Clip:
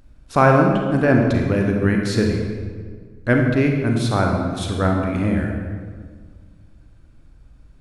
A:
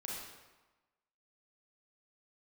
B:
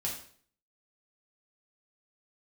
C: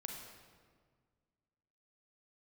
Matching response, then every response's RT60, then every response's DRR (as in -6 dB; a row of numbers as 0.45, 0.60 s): C; 1.2, 0.50, 1.7 s; -4.5, -4.0, 1.0 dB